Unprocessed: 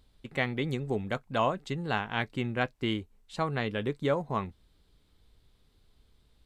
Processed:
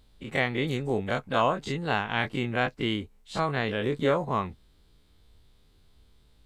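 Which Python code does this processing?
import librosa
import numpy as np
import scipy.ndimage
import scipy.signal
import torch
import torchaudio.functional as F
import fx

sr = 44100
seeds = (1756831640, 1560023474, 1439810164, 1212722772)

y = fx.spec_dilate(x, sr, span_ms=60)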